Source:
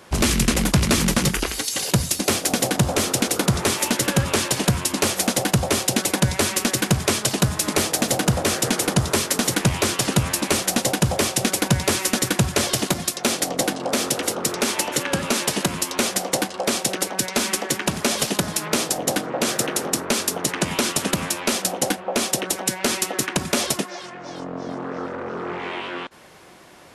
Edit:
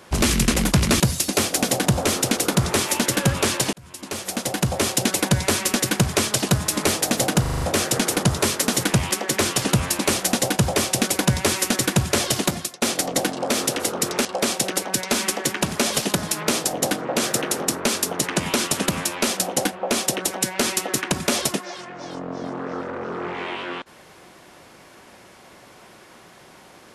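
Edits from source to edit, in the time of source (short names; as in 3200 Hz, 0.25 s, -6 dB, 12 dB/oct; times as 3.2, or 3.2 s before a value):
1–1.91 cut
4.64–5.85 fade in
8.32 stutter 0.04 s, 6 plays
12.96–13.25 fade out, to -22 dB
14.68–16.5 cut
17.52–17.8 copy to 9.82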